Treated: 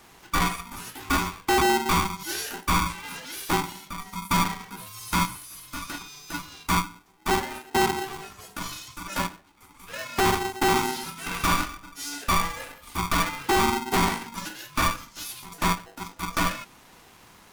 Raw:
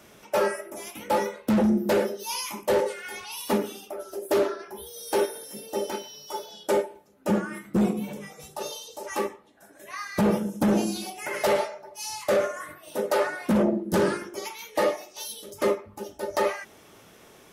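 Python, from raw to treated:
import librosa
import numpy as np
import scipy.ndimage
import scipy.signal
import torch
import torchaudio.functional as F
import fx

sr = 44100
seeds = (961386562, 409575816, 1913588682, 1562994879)

y = fx.highpass(x, sr, hz=610.0, slope=24, at=(5.36, 6.01))
y = y * np.sign(np.sin(2.0 * np.pi * 580.0 * np.arange(len(y)) / sr))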